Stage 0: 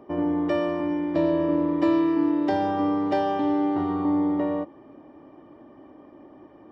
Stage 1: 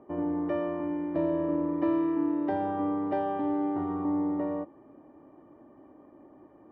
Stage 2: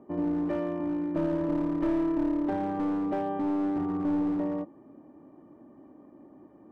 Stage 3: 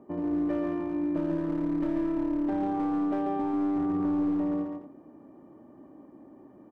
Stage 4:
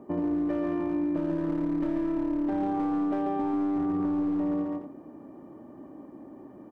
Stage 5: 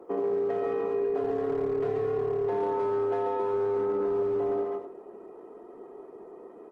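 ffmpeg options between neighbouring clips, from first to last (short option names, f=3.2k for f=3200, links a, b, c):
-af "lowpass=1.8k,volume=-5.5dB"
-af "equalizer=f=200:t=o:w=1.3:g=8,aeval=exprs='clip(val(0),-1,0.0668)':c=same,volume=-2.5dB"
-filter_complex "[0:a]acompressor=threshold=-30dB:ratio=2.5,asplit=2[a][b];[b]aecho=0:1:140|229:0.596|0.237[c];[a][c]amix=inputs=2:normalize=0"
-af "acompressor=threshold=-30dB:ratio=6,volume=5dB"
-af "afreqshift=110" -ar 48000 -c:a libopus -b:a 16k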